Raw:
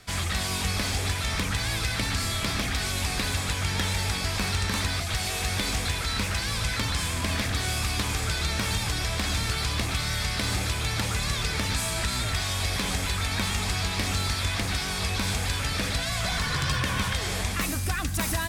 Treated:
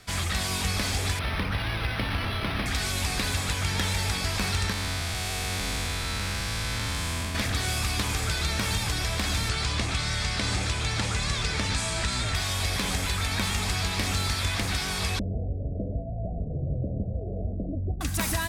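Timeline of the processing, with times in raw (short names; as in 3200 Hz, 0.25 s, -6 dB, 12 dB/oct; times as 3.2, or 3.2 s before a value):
1.19–2.66 decimation joined by straight lines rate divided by 6×
4.72–7.35 time blur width 0.262 s
9.49–12.35 LPF 9200 Hz 24 dB/oct
15.19–18.01 steep low-pass 690 Hz 96 dB/oct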